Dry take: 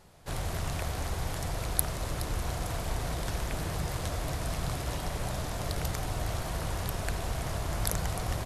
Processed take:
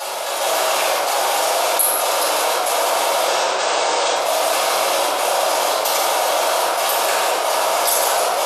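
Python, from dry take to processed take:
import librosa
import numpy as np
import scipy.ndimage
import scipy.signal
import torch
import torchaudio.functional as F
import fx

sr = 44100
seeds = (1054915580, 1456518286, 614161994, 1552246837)

y = fx.brickwall_lowpass(x, sr, high_hz=8700.0, at=(3.23, 4.15))
y = y + 10.0 ** (-8.5 / 20.0) * np.pad(y, (int(146 * sr / 1000.0), 0))[:len(y)]
y = fx.step_gate(y, sr, bpm=113, pattern='xx.xxxx.xxxx', floor_db=-12.0, edge_ms=4.5)
y = scipy.signal.sosfilt(scipy.signal.butter(4, 520.0, 'highpass', fs=sr, output='sos'), y)
y = fx.peak_eq(y, sr, hz=1900.0, db=-7.5, octaves=0.34)
y = fx.room_shoebox(y, sr, seeds[0], volume_m3=280.0, walls='mixed', distance_m=6.3)
y = fx.env_flatten(y, sr, amount_pct=70)
y = y * 10.0 ** (-1.0 / 20.0)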